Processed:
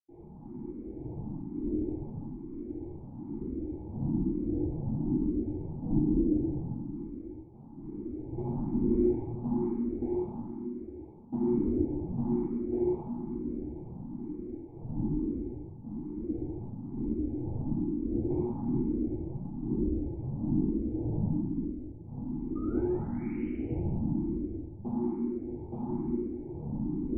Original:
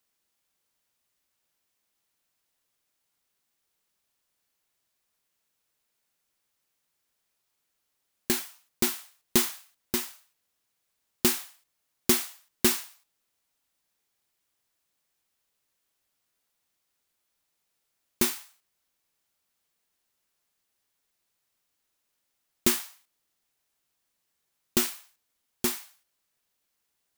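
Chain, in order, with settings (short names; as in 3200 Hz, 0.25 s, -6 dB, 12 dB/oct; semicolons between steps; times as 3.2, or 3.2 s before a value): per-bin compression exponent 0.4; wind noise 180 Hz -33 dBFS; gate with hold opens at -29 dBFS; high shelf 3400 Hz -10.5 dB; compressor 5:1, threshold -26 dBFS, peak gain reduction 13.5 dB; flange 0.15 Hz, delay 4.7 ms, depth 5.8 ms, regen -78%; painted sound rise, 22.47–23.4, 1200–3100 Hz -27 dBFS; vocal tract filter u; reverb RT60 2.2 s, pre-delay 77 ms; endless phaser +1.1 Hz; gain +4.5 dB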